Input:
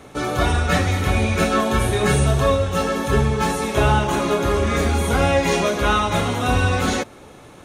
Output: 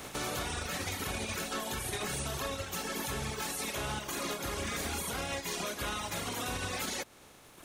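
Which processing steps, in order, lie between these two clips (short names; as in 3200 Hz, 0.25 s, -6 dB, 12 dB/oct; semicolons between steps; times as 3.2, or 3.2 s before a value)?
spectral contrast lowered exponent 0.53; reverb removal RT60 1.6 s; compressor 6:1, threshold -30 dBFS, peak gain reduction 15.5 dB; limiter -25 dBFS, peak gain reduction 7 dB; gain -1 dB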